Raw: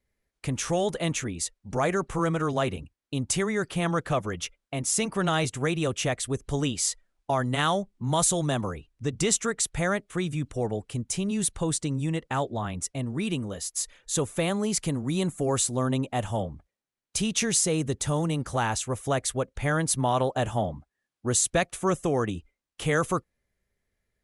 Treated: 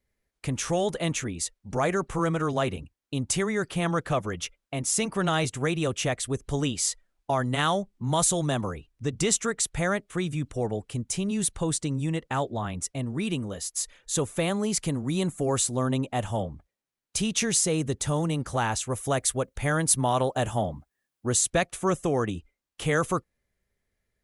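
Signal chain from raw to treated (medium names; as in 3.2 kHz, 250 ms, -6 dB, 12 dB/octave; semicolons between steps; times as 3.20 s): 18.90–21.27 s: treble shelf 10 kHz +11 dB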